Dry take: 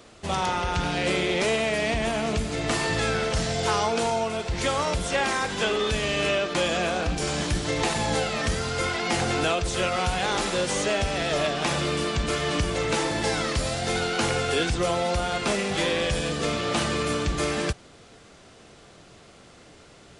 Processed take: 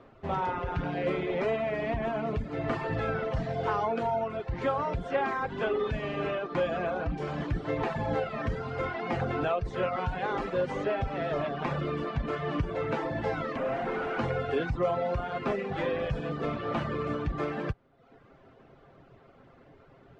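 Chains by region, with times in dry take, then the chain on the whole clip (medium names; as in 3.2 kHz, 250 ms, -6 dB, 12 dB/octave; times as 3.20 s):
13.56–14.19 s: CVSD coder 16 kbps + high-pass 190 Hz 24 dB/octave + companded quantiser 2-bit
whole clip: low-pass 1.5 kHz 12 dB/octave; reverb removal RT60 0.77 s; comb 7.5 ms, depth 36%; trim -2.5 dB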